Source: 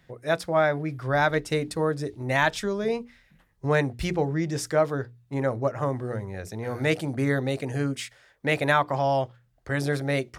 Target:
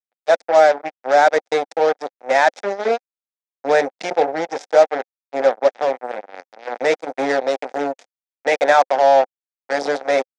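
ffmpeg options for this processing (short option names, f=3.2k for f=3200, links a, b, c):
-af "acrusher=bits=3:mix=0:aa=0.5,highpass=f=290:w=0.5412,highpass=f=290:w=1.3066,equalizer=f=340:t=q:w=4:g=-7,equalizer=f=530:t=q:w=4:g=7,equalizer=f=760:t=q:w=4:g=9,equalizer=f=1.1k:t=q:w=4:g=-7,equalizer=f=2.9k:t=q:w=4:g=-8,equalizer=f=4.3k:t=q:w=4:g=-5,lowpass=f=6.2k:w=0.5412,lowpass=f=6.2k:w=1.3066,volume=5.5dB"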